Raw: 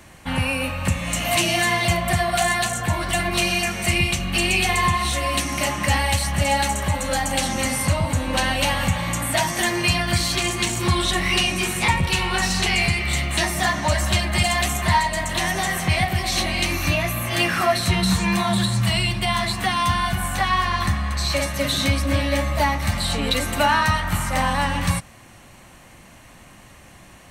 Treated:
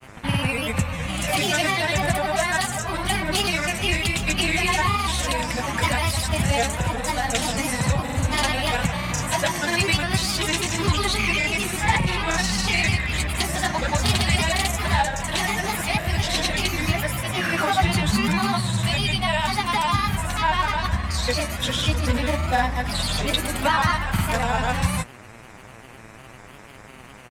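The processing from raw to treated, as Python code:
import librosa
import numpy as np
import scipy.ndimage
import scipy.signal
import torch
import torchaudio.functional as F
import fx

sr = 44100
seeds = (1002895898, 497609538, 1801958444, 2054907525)

y = fx.dmg_buzz(x, sr, base_hz=120.0, harmonics=23, level_db=-45.0, tilt_db=-2, odd_only=False)
y = fx.granulator(y, sr, seeds[0], grain_ms=100.0, per_s=20.0, spray_ms=100.0, spread_st=3)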